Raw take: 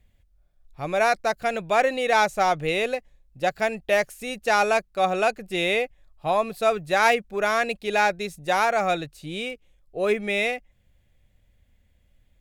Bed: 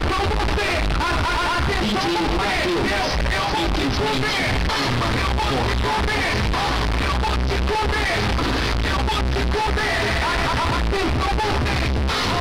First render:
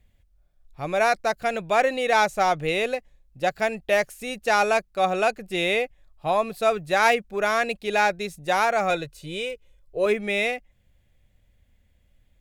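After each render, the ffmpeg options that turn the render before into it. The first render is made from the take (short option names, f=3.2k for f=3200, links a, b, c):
-filter_complex "[0:a]asettb=1/sr,asplit=3[a][b][c];[a]atrim=end=8.904[d];[b]atrim=start=8.9:end=10.06,asetpts=PTS-STARTPTS,afade=t=in:d=0.004:c=qsin,afade=t=out:st=1.156:d=0.004:c=qsin,aecho=1:1:2:0.57,atrim=end_sample=51156[e];[c]atrim=start=10.056[f];[d][e]acrossfade=d=0.004:c1=hsin:c2=qsin[g];[g][f]acrossfade=d=0.004:c1=qsin:c2=hsin"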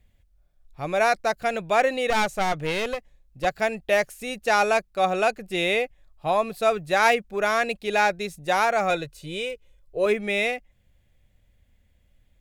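-filter_complex "[0:a]asettb=1/sr,asplit=3[a][b][c];[a]atrim=end=2.104[d];[b]atrim=start=2.1:end=3.45,asetpts=PTS-STARTPTS,afade=t=in:d=0.004:c=qsin,afade=t=out:st=1.346:d=0.004:c=qsin,aeval=exprs='clip(val(0),-1,0.0316)':c=same[e];[c]atrim=start=3.446[f];[d][e]acrossfade=d=0.004:c1=hsin:c2=qsin[g];[g][f]acrossfade=d=0.004:c1=qsin:c2=hsin"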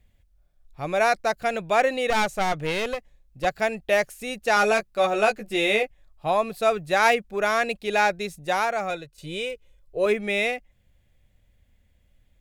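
-filter_complex "[0:a]asettb=1/sr,asplit=3[a][b][c];[a]atrim=end=4.554[d];[b]atrim=start=4.55:end=5.83,asetpts=PTS-STARTPTS,afade=t=in:d=0.004:c=qsin,afade=t=out:st=1.276:d=0.004:c=qsin,asplit=2[e][f];[f]adelay=14,volume=-4dB[g];[e][g]amix=inputs=2:normalize=0,atrim=end_sample=56448[h];[c]atrim=start=5.826[i];[d][h]acrossfade=d=0.004:c1=hsin:c2=qsin[j];[j][i]acrossfade=d=0.004:c1=qsin:c2=hsin,asplit=2[k][l];[k]atrim=end=9.18,asetpts=PTS-STARTPTS,afade=t=out:st=8.31:d=0.87:silence=0.298538[m];[l]atrim=start=9.18,asetpts=PTS-STARTPTS,afade=t=in:d=0.004:c=hsin:silence=0.298538[n];[m][n]concat=n=2:v=0:a=1"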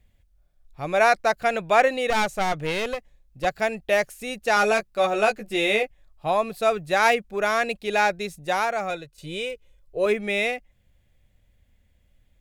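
-filter_complex "[0:a]asettb=1/sr,asplit=3[a][b][c];[a]atrim=end=0.944[d];[b]atrim=start=0.94:end=1.88,asetpts=PTS-STARTPTS,afade=t=in:d=0.004:c=qsin,afade=t=out:st=0.936:d=0.004:c=qsin,equalizer=f=1.3k:w=0.45:g=3.5[e];[c]atrim=start=1.876[f];[d][e]acrossfade=d=0.004:c1=hsin:c2=qsin[g];[g][f]acrossfade=d=0.004:c1=qsin:c2=hsin"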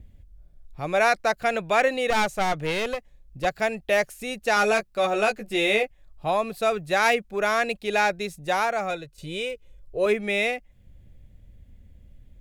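-filter_complex "[0:a]acrossover=split=450|1400[a][b][c];[a]acompressor=mode=upward:threshold=-35dB:ratio=2.5[d];[b]alimiter=limit=-18dB:level=0:latency=1[e];[d][e][c]amix=inputs=3:normalize=0"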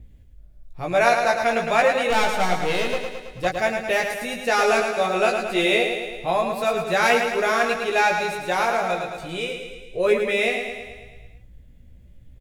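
-filter_complex "[0:a]asplit=2[a][b];[b]adelay=17,volume=-3.5dB[c];[a][c]amix=inputs=2:normalize=0,aecho=1:1:109|218|327|436|545|654|763|872:0.501|0.301|0.18|0.108|0.065|0.039|0.0234|0.014"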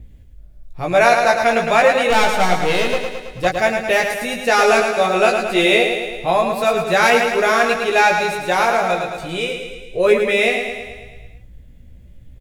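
-af "volume=5.5dB,alimiter=limit=-2dB:level=0:latency=1"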